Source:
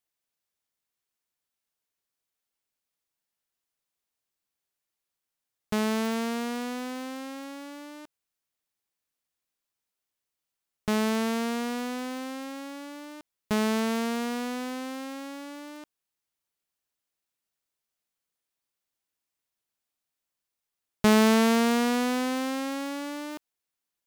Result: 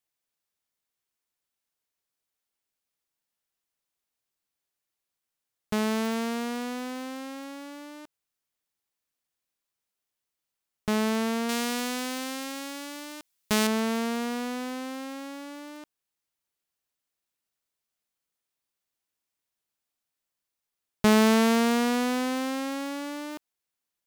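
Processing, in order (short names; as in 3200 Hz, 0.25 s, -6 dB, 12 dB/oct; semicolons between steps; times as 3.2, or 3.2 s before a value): 11.49–13.67 high shelf 2100 Hz +10.5 dB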